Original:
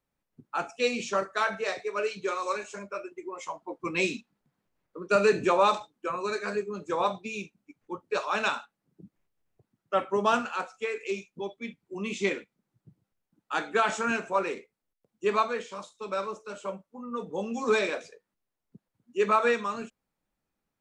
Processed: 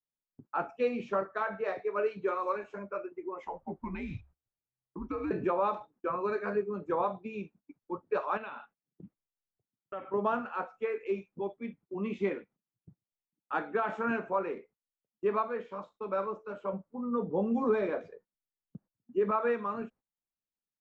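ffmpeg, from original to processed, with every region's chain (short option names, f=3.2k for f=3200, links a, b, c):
-filter_complex "[0:a]asettb=1/sr,asplit=3[a][b][c];[a]atrim=end=3.434[d];[b]atrim=start=3.43:end=5.31,asetpts=PTS-STARTPTS,afade=t=in:d=0.004:c=qsin,afade=t=out:st=1.876:d=0.004:c=qsin,bandreject=f=50:t=h:w=6,bandreject=f=100:t=h:w=6,bandreject=f=150:t=h:w=6,bandreject=f=200:t=h:w=6,acompressor=threshold=-32dB:ratio=5:attack=3.2:release=140:knee=1:detection=peak,afreqshift=-130[e];[c]atrim=start=5.306[f];[d][e]acrossfade=d=0.004:c1=hsin:c2=qsin[g];[g][f]acrossfade=d=0.004:c1=qsin:c2=hsin,asettb=1/sr,asplit=3[h][i][j];[h]atrim=end=8.374[k];[i]atrim=start=8.37:end=10.14,asetpts=PTS-STARTPTS,afade=t=in:d=0.004:c=qsin,afade=t=out:st=1.766:d=0.004:c=qsin,acrusher=bits=8:mode=log:mix=0:aa=0.000001,acompressor=threshold=-37dB:ratio=4:attack=3.2:release=140:knee=1:detection=peak,lowpass=f=3.1k:t=q:w=2.1[l];[j]atrim=start=10.136[m];[k][l]acrossfade=d=0.004:c1=hsin:c2=qsin[n];[n][m]acrossfade=d=0.004:c1=qsin:c2=hsin,asettb=1/sr,asplit=3[o][p][q];[o]atrim=end=16.734[r];[p]atrim=start=16.73:end=19.31,asetpts=PTS-STARTPTS,afade=t=in:d=0.004:c=qsin,afade=t=out:st=2.576:d=0.004:c=qsin,lowshelf=f=410:g=7,bandreject=f=2.6k:w=12[s];[q]atrim=start=19.306[t];[r][s]acrossfade=d=0.004:c1=hsin:c2=qsin[u];[u][t]acrossfade=d=0.004:c1=qsin:c2=hsin,agate=range=-21dB:threshold=-55dB:ratio=16:detection=peak,lowpass=1.4k,alimiter=limit=-20dB:level=0:latency=1:release=335"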